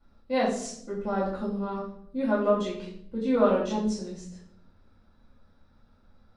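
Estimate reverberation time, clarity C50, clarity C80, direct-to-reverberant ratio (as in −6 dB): 0.65 s, 3.5 dB, 7.5 dB, −10.0 dB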